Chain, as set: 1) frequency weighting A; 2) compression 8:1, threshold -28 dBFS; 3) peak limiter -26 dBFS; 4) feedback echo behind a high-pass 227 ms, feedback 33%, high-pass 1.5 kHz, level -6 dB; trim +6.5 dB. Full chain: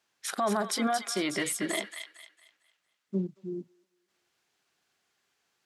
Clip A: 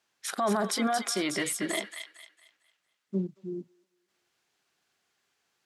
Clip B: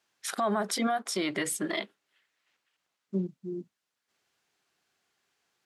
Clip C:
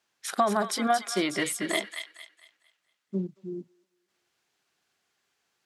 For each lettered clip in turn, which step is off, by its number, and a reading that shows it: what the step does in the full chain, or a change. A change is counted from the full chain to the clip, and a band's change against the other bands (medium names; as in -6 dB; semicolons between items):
2, mean gain reduction 3.5 dB; 4, echo-to-direct -8.5 dB to none; 3, crest factor change +4.5 dB